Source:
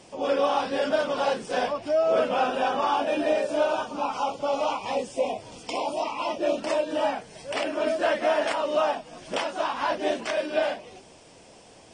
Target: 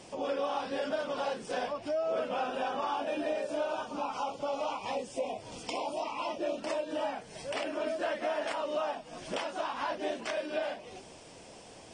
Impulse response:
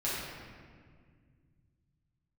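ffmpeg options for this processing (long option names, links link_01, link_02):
-af "acompressor=threshold=-37dB:ratio=2"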